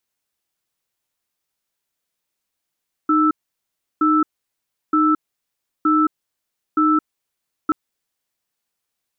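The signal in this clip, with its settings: cadence 308 Hz, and 1.32 kHz, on 0.22 s, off 0.70 s, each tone -15.5 dBFS 4.63 s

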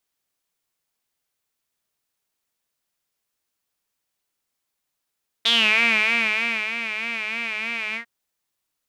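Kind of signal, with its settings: synth patch with vibrato A3, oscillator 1 triangle, oscillator 2 saw, interval 0 st, detune 26 cents, oscillator 2 level -1 dB, sub -24 dB, filter bandpass, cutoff 1.8 kHz, Q 8.6, filter envelope 1 oct, attack 9.8 ms, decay 1.28 s, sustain -11.5 dB, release 0.10 s, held 2.50 s, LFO 3.2 Hz, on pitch 82 cents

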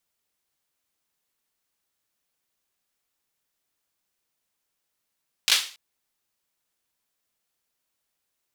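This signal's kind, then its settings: hand clap length 0.28 s, bursts 3, apart 18 ms, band 3.4 kHz, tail 0.39 s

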